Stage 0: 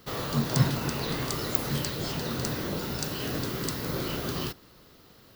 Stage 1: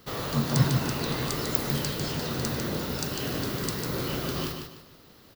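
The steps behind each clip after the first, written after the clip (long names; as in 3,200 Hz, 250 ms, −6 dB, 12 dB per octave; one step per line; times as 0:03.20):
repeating echo 149 ms, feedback 32%, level −6 dB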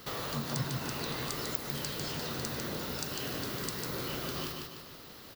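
low-shelf EQ 490 Hz −5.5 dB
downward compressor 2 to 1, threshold −48 dBFS, peak gain reduction 16 dB
level +6 dB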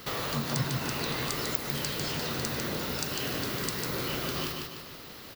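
parametric band 2,300 Hz +3 dB 0.7 octaves
level +4 dB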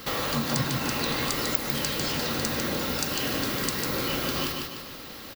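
comb filter 3.7 ms, depth 31%
level +4 dB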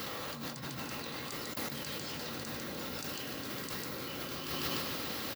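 high-pass filter 69 Hz
compressor whose output falls as the input rises −36 dBFS, ratio −1
level −4 dB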